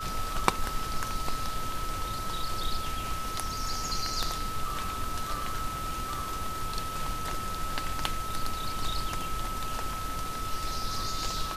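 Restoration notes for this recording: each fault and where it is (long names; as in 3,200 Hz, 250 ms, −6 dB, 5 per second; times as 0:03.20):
whistle 1,300 Hz −35 dBFS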